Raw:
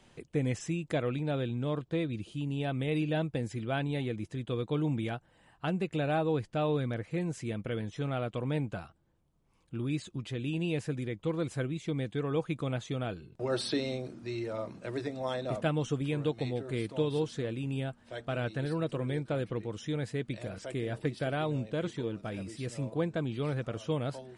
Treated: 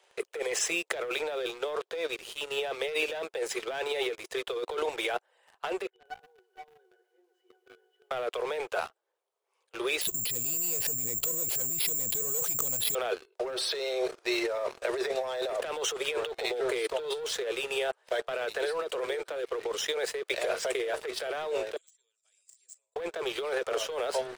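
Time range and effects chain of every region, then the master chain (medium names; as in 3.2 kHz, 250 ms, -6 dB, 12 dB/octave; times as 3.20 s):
5.90–8.11 s: compression 10:1, threshold -35 dBFS + pitch-class resonator F#, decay 0.21 s + bit-crushed delay 123 ms, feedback 35%, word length 12-bit, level -10.5 dB
10.01–12.95 s: peaking EQ 1.3 kHz -12.5 dB 1.5 oct + compressor with a negative ratio -42 dBFS + careless resampling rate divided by 6×, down filtered, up zero stuff
21.76–22.96 s: band-pass filter 7.5 kHz, Q 12 + three bands compressed up and down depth 70%
whole clip: steep high-pass 380 Hz 96 dB/octave; waveshaping leveller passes 3; compressor with a negative ratio -31 dBFS, ratio -1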